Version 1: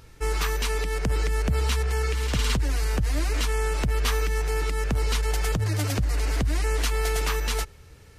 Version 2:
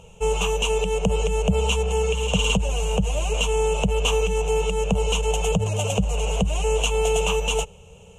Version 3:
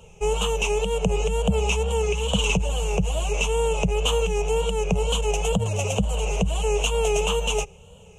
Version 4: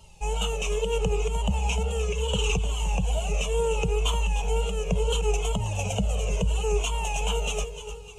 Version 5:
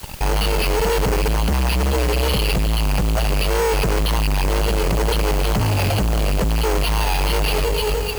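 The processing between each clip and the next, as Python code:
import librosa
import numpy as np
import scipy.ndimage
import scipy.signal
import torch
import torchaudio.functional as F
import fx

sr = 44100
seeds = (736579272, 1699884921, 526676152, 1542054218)

y1 = fx.curve_eq(x, sr, hz=(130.0, 190.0, 300.0, 450.0, 930.0, 1900.0, 2800.0, 4700.0, 6700.0, 14000.0), db=(0, 13, -16, 11, 7, -19, 14, -18, 10, -13))
y2 = fx.wow_flutter(y1, sr, seeds[0], rate_hz=2.1, depth_cents=99.0)
y2 = y2 * 10.0 ** (-1.0 / 20.0)
y3 = fx.dmg_noise_band(y2, sr, seeds[1], low_hz=2700.0, high_hz=10000.0, level_db=-59.0)
y3 = fx.echo_feedback(y3, sr, ms=302, feedback_pct=44, wet_db=-11.5)
y3 = fx.comb_cascade(y3, sr, direction='falling', hz=0.72)
y4 = fx.fuzz(y3, sr, gain_db=43.0, gate_db=-49.0)
y4 = np.repeat(scipy.signal.resample_poly(y4, 1, 6), 6)[:len(y4)]
y4 = fx.quant_dither(y4, sr, seeds[2], bits=6, dither='triangular')
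y4 = y4 * 10.0 ** (-3.5 / 20.0)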